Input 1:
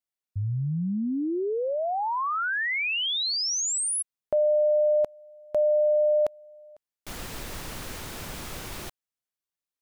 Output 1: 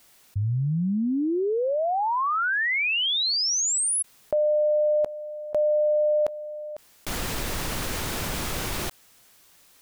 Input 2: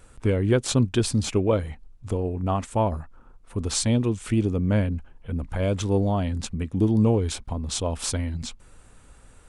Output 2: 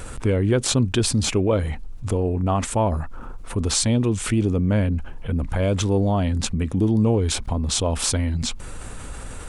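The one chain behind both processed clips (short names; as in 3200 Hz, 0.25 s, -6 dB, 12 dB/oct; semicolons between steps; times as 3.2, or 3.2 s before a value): fast leveller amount 50%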